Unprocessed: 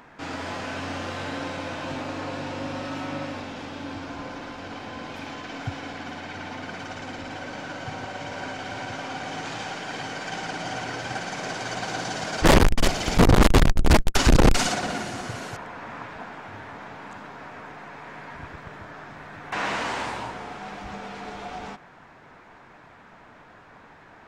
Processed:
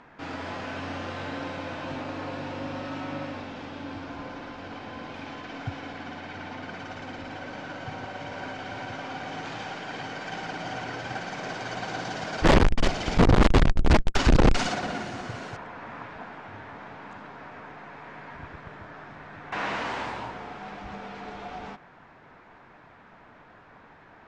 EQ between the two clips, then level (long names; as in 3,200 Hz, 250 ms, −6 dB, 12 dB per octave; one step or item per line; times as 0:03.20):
high-frequency loss of the air 100 metres
−2.0 dB